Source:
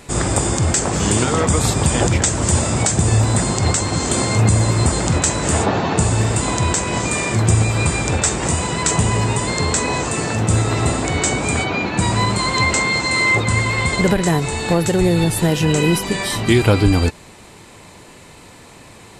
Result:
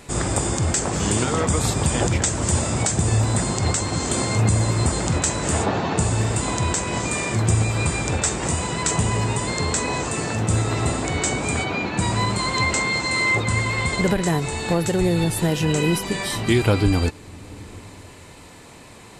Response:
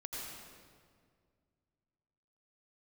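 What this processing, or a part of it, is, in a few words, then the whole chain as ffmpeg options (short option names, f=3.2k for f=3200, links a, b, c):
ducked reverb: -filter_complex "[0:a]asplit=3[a][b][c];[1:a]atrim=start_sample=2205[d];[b][d]afir=irnorm=-1:irlink=0[e];[c]apad=whole_len=846560[f];[e][f]sidechaincompress=threshold=-34dB:ratio=8:attack=16:release=417,volume=-6.5dB[g];[a][g]amix=inputs=2:normalize=0,volume=-4.5dB"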